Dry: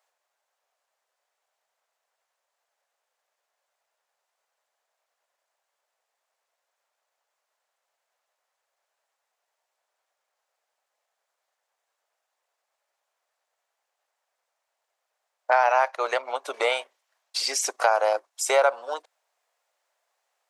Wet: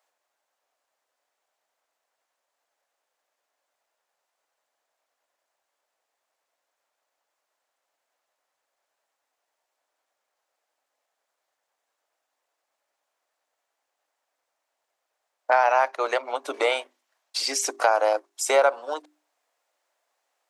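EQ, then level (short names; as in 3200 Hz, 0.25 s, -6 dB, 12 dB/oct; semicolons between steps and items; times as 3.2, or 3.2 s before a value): bell 290 Hz +13 dB 0.55 oct; notches 50/100/150/200/250/300/350/400 Hz; 0.0 dB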